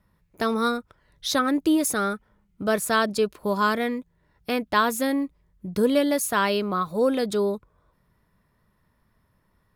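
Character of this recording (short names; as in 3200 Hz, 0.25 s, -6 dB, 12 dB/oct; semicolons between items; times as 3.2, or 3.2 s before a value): noise floor -68 dBFS; spectral tilt -3.5 dB/oct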